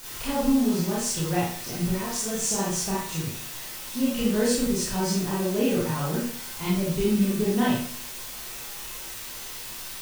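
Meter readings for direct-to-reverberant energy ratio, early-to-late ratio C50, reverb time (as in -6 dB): -7.5 dB, 0.5 dB, 0.50 s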